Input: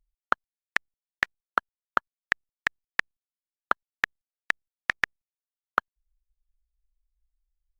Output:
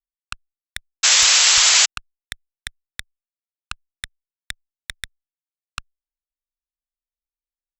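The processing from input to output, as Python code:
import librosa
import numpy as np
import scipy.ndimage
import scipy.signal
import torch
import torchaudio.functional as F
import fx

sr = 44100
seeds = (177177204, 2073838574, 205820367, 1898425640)

y = fx.cheby_harmonics(x, sr, harmonics=(4, 5, 7), levels_db=(-7, -23, -13), full_scale_db=-3.0)
y = fx.spec_paint(y, sr, seeds[0], shape='noise', start_s=1.03, length_s=0.83, low_hz=290.0, high_hz=7800.0, level_db=-7.0)
y = fx.tone_stack(y, sr, knobs='10-0-10')
y = F.gain(torch.from_numpy(y), -4.5).numpy()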